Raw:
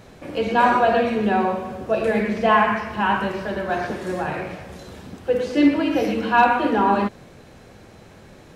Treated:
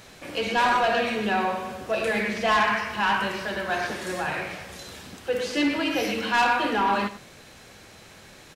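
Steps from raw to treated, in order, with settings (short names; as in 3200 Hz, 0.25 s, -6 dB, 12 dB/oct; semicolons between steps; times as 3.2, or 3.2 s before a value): tilt shelf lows -7 dB, about 1200 Hz; soft clip -16 dBFS, distortion -12 dB; on a send: echo 98 ms -15.5 dB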